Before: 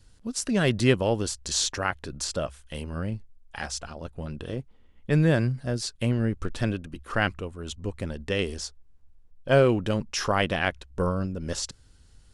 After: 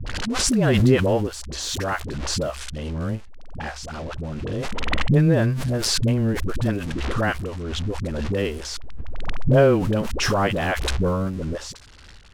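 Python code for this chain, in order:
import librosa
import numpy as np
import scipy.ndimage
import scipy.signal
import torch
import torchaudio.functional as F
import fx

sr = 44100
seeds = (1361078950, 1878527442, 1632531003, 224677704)

y = x + 0.5 * 10.0 ** (-25.0 / 20.0) * np.diff(np.sign(x), prepend=np.sign(x[:1]))
y = fx.high_shelf(y, sr, hz=9900.0, db=-10.0)
y = fx.dispersion(y, sr, late='highs', ms=66.0, hz=420.0)
y = fx.env_lowpass(y, sr, base_hz=2200.0, full_db=-24.5)
y = fx.high_shelf(y, sr, hz=2400.0, db=-11.5)
y = fx.pre_swell(y, sr, db_per_s=21.0)
y = y * librosa.db_to_amplitude(4.0)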